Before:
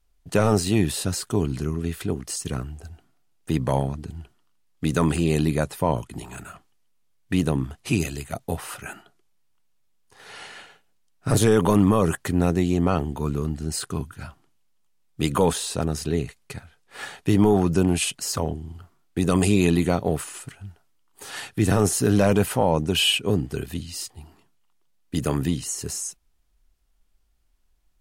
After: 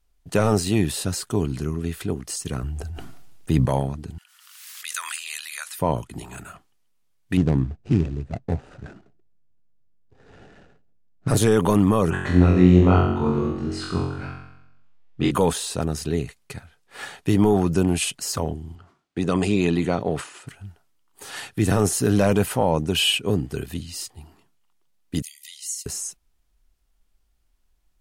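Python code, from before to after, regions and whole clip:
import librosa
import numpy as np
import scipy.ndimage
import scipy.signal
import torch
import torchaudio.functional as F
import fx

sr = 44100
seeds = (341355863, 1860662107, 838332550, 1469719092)

y = fx.chain(x, sr, fx.low_shelf(hz=150.0, db=7.5),
    fx.sustainer(db_per_s=23.0), at=(2.63, 3.66))
y = fx.chain(y, sr, fx.highpass(hz=1400.0, slope=24),
    fx.high_shelf(hz=6700.0, db=4.5),
    fx.pre_swell(db_per_s=45.0), at=(4.18, 5.79))
y = fx.chain(y, sr, fx.median_filter(points=41),
    fx.lowpass(hz=7900.0, slope=24),
    fx.low_shelf(hz=210.0, db=7.0), at=(7.37, 11.28))
y = fx.chain(y, sr, fx.lowpass(hz=3300.0, slope=12),
    fx.room_flutter(wall_m=3.8, rt60_s=0.84), at=(12.1, 15.31))
y = fx.chain(y, sr, fx.highpass(hz=140.0, slope=6),
    fx.air_absorb(metres=81.0),
    fx.sustainer(db_per_s=140.0), at=(18.75, 20.47))
y = fx.chain(y, sr, fx.brickwall_highpass(low_hz=1900.0),
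    fx.peak_eq(hz=2500.0, db=-9.5, octaves=0.52), at=(25.22, 25.86))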